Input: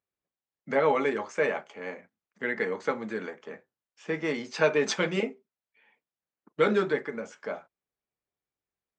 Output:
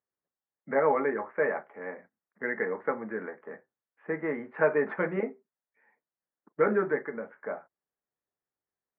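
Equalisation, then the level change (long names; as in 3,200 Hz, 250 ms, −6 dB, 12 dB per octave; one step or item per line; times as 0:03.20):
elliptic low-pass filter 1,900 Hz, stop band 70 dB
low-shelf EQ 120 Hz −7.5 dB
0.0 dB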